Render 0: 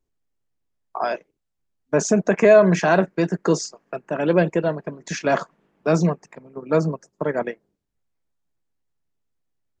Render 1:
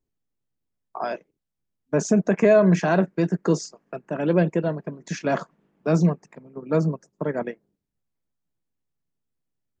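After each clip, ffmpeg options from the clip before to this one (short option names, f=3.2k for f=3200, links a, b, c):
-af "equalizer=f=180:w=0.63:g=6.5,volume=-5.5dB"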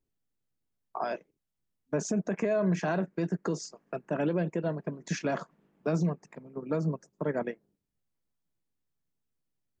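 -af "alimiter=limit=-18dB:level=0:latency=1:release=219,volume=-2dB"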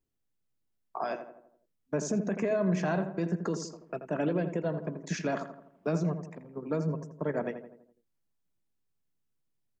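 -filter_complex "[0:a]asplit=2[a][b];[b]adelay=83,lowpass=f=1.6k:p=1,volume=-8.5dB,asplit=2[c][d];[d]adelay=83,lowpass=f=1.6k:p=1,volume=0.52,asplit=2[e][f];[f]adelay=83,lowpass=f=1.6k:p=1,volume=0.52,asplit=2[g][h];[h]adelay=83,lowpass=f=1.6k:p=1,volume=0.52,asplit=2[i][j];[j]adelay=83,lowpass=f=1.6k:p=1,volume=0.52,asplit=2[k][l];[l]adelay=83,lowpass=f=1.6k:p=1,volume=0.52[m];[a][c][e][g][i][k][m]amix=inputs=7:normalize=0,volume=-1dB"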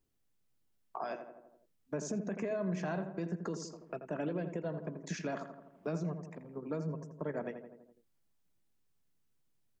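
-af "acompressor=threshold=-56dB:ratio=1.5,volume=3.5dB"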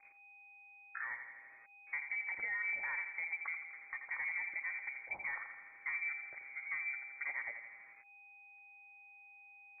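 -af "aeval=exprs='val(0)+0.5*0.00299*sgn(val(0))':c=same,aeval=exprs='val(0)+0.000631*sin(2*PI*1700*n/s)':c=same,lowpass=f=2.1k:t=q:w=0.5098,lowpass=f=2.1k:t=q:w=0.6013,lowpass=f=2.1k:t=q:w=0.9,lowpass=f=2.1k:t=q:w=2.563,afreqshift=-2500,volume=-4dB"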